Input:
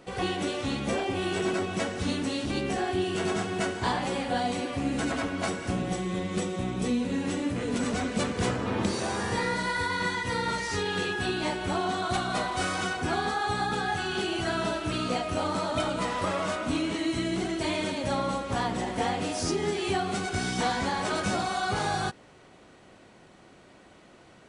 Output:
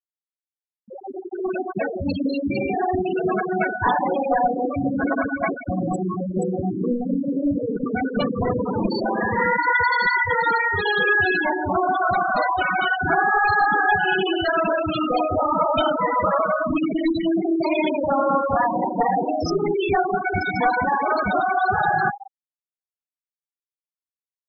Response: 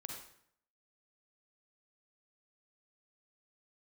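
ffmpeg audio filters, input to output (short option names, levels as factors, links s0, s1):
-filter_complex "[0:a]asplit=2[s0][s1];[1:a]atrim=start_sample=2205,adelay=42[s2];[s1][s2]afir=irnorm=-1:irlink=0,volume=0.473[s3];[s0][s3]amix=inputs=2:normalize=0,aeval=exprs='clip(val(0),-1,0.0422)':c=same,lowshelf=f=480:g=-6.5,bandreject=f=60:t=h:w=6,bandreject=f=120:t=h:w=6,bandreject=f=180:t=h:w=6,bandreject=f=240:t=h:w=6,bandreject=f=300:t=h:w=6,bandreject=f=360:t=h:w=6,bandreject=f=420:t=h:w=6,asplit=2[s4][s5];[s5]adelay=190,lowpass=f=1700:p=1,volume=0.355,asplit=2[s6][s7];[s7]adelay=190,lowpass=f=1700:p=1,volume=0.34,asplit=2[s8][s9];[s9]adelay=190,lowpass=f=1700:p=1,volume=0.34,asplit=2[s10][s11];[s11]adelay=190,lowpass=f=1700:p=1,volume=0.34[s12];[s4][s6][s8][s10][s12]amix=inputs=5:normalize=0,dynaudnorm=f=290:g=9:m=5.01,afftfilt=real='re*gte(hypot(re,im),0.316)':imag='im*gte(hypot(re,im),0.316)':win_size=1024:overlap=0.75"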